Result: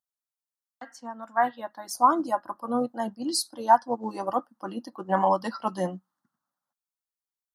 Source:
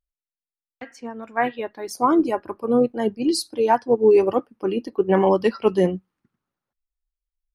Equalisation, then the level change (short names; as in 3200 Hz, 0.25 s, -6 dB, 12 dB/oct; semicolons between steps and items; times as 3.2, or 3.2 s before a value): HPF 280 Hz 12 dB/oct; fixed phaser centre 1000 Hz, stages 4; +1.5 dB